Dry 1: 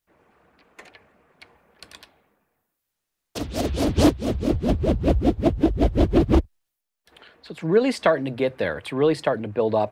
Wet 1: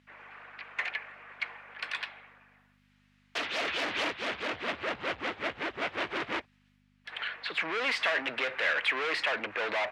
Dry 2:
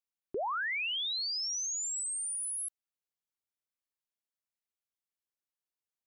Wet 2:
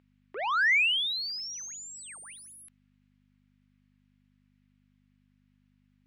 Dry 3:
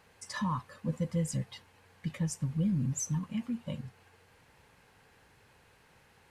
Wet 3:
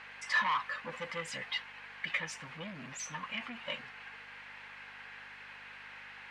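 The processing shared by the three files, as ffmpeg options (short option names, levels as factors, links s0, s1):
-filter_complex "[0:a]asplit=2[s0][s1];[s1]highpass=f=720:p=1,volume=50.1,asoftclip=type=tanh:threshold=0.473[s2];[s0][s2]amix=inputs=2:normalize=0,lowpass=f=2400:p=1,volume=0.501,aeval=exprs='val(0)+0.0316*(sin(2*PI*50*n/s)+sin(2*PI*2*50*n/s)/2+sin(2*PI*3*50*n/s)/3+sin(2*PI*4*50*n/s)/4+sin(2*PI*5*50*n/s)/5)':c=same,bandpass=f=2200:t=q:w=1.4:csg=0,volume=0.473"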